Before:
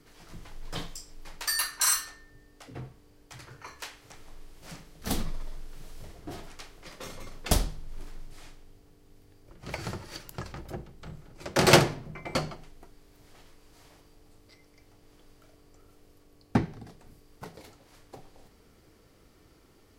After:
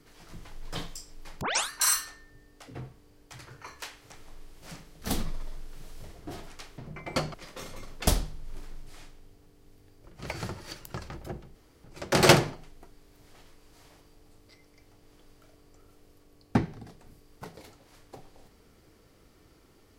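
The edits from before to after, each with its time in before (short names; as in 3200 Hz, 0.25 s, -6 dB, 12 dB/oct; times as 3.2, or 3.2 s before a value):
1.41 tape start 0.29 s
10.99–11.28 room tone
11.97–12.53 move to 6.78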